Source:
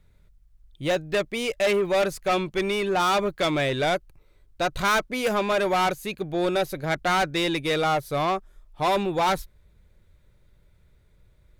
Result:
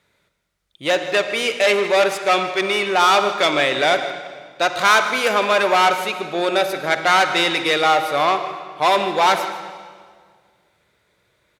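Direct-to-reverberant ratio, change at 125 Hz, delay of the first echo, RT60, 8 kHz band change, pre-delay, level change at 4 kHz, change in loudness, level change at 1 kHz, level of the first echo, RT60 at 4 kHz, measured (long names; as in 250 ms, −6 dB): 7.5 dB, −5.0 dB, 155 ms, 1.8 s, +7.5 dB, 39 ms, +9.0 dB, +7.0 dB, +8.0 dB, −15.5 dB, 1.5 s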